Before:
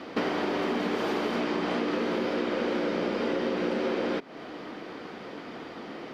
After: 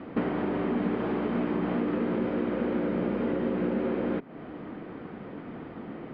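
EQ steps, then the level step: air absorption 380 m; tone controls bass +11 dB, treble -9 dB; -2.0 dB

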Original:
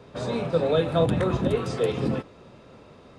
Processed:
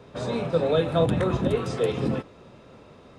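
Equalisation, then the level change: notch 4600 Hz, Q 24; 0.0 dB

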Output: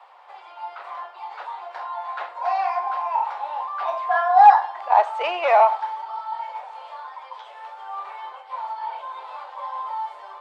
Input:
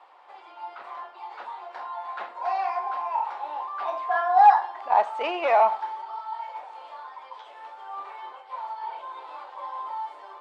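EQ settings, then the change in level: HPF 470 Hz 24 dB/oct; +4.0 dB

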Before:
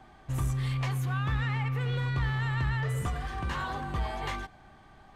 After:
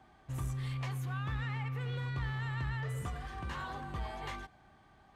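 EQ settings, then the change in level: HPF 40 Hz; -7.0 dB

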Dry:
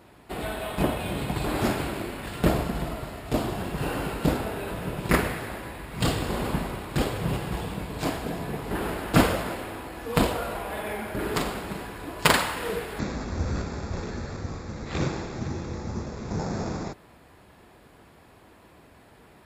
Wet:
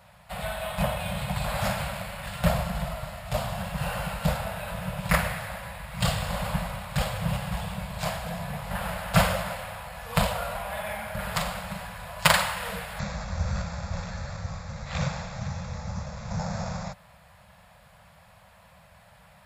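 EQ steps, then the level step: Chebyshev band-stop 190–550 Hz, order 3; +1.0 dB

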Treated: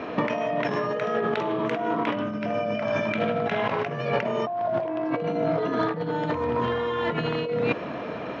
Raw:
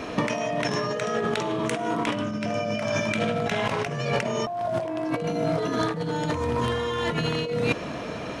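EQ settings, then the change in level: HPF 250 Hz 6 dB/oct; air absorption 220 m; high shelf 3800 Hz -7.5 dB; +3.0 dB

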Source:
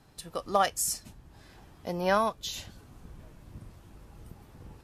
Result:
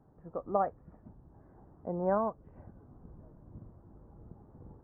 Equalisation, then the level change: Gaussian blur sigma 8.5 samples; low shelf 86 Hz -7.5 dB; 0.0 dB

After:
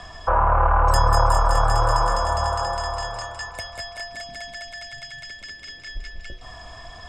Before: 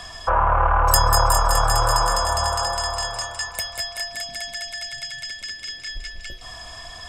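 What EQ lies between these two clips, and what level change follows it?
LPF 7900 Hz 12 dB/oct; high shelf 2000 Hz -10 dB; +1.5 dB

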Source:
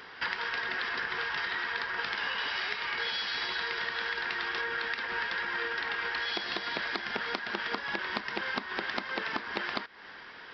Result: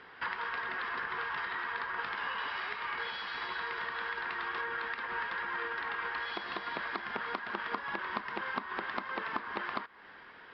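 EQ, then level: dynamic EQ 1100 Hz, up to +8 dB, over -52 dBFS, Q 2.5; air absorption 260 m; -3.5 dB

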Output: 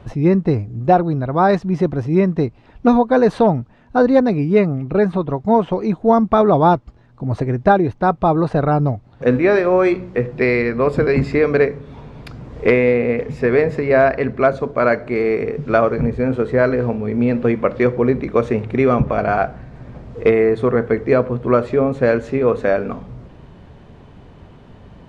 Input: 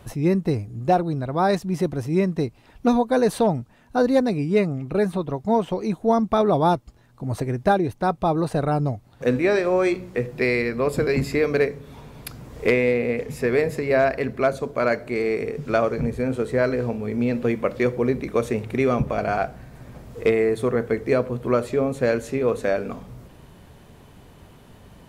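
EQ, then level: high shelf 4000 Hz +11 dB; dynamic EQ 1300 Hz, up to +4 dB, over -36 dBFS, Q 1; tape spacing loss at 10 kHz 34 dB; +6.5 dB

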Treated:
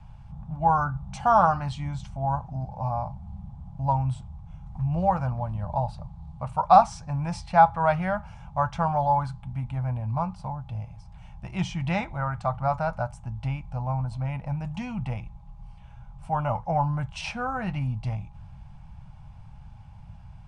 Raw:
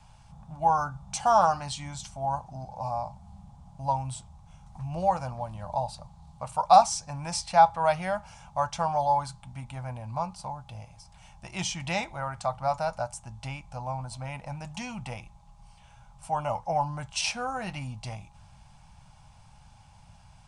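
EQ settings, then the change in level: tone controls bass +10 dB, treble -15 dB; dynamic EQ 1400 Hz, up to +5 dB, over -41 dBFS, Q 1.6; 0.0 dB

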